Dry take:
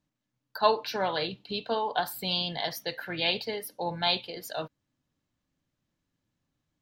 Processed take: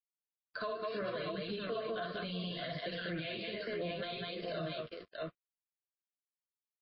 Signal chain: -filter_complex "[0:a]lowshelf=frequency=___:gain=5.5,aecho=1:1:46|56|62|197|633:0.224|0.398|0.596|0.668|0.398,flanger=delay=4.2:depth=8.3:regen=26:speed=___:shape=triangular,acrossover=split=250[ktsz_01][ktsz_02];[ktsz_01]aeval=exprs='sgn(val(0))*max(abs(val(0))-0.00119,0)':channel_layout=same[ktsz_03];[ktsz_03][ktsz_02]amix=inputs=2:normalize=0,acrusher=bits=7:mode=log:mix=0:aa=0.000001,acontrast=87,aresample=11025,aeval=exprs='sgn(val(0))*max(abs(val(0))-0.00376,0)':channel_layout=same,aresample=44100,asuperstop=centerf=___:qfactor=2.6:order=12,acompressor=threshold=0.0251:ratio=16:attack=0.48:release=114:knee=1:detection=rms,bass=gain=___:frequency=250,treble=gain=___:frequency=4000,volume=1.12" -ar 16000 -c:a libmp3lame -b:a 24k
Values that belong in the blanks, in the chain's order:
350, 0.67, 850, -1, -13